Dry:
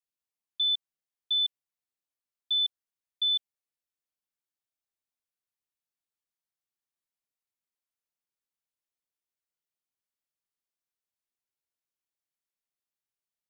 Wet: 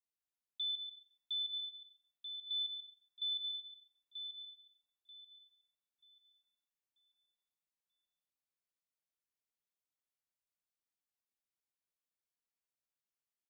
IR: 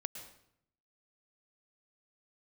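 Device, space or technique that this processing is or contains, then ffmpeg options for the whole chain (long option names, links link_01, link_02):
bathroom: -filter_complex "[0:a]acrossover=split=3200[link_01][link_02];[link_02]acompressor=threshold=-40dB:ratio=4:attack=1:release=60[link_03];[link_01][link_03]amix=inputs=2:normalize=0,asplit=2[link_04][link_05];[link_05]adelay=936,lowpass=frequency=3400:poles=1,volume=-4.5dB,asplit=2[link_06][link_07];[link_07]adelay=936,lowpass=frequency=3400:poles=1,volume=0.4,asplit=2[link_08][link_09];[link_09]adelay=936,lowpass=frequency=3400:poles=1,volume=0.4,asplit=2[link_10][link_11];[link_11]adelay=936,lowpass=frequency=3400:poles=1,volume=0.4,asplit=2[link_12][link_13];[link_13]adelay=936,lowpass=frequency=3400:poles=1,volume=0.4[link_14];[link_04][link_06][link_08][link_10][link_12][link_14]amix=inputs=6:normalize=0[link_15];[1:a]atrim=start_sample=2205[link_16];[link_15][link_16]afir=irnorm=-1:irlink=0,volume=-5dB"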